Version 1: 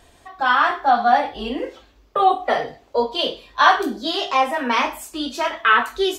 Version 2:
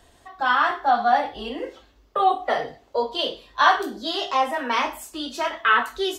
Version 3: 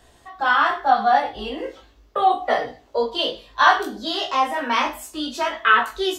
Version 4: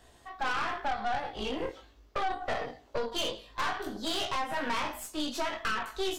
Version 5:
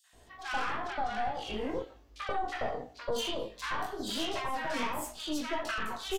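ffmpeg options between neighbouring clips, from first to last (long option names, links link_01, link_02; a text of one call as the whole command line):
ffmpeg -i in.wav -filter_complex "[0:a]bandreject=frequency=2400:width=17,acrossover=split=350|3600[link_01][link_02][link_03];[link_01]alimiter=level_in=6dB:limit=-24dB:level=0:latency=1,volume=-6dB[link_04];[link_04][link_02][link_03]amix=inputs=3:normalize=0,volume=-3dB" out.wav
ffmpeg -i in.wav -af "flanger=delay=16.5:depth=2.8:speed=0.39,volume=5dB" out.wav
ffmpeg -i in.wav -af "acompressor=threshold=-22dB:ratio=10,aeval=exprs='(tanh(22.4*val(0)+0.8)-tanh(0.8))/22.4':channel_layout=same" out.wav
ffmpeg -i in.wav -filter_complex "[0:a]acrossover=split=1200|3800[link_01][link_02][link_03];[link_02]adelay=40[link_04];[link_01]adelay=130[link_05];[link_05][link_04][link_03]amix=inputs=3:normalize=0" out.wav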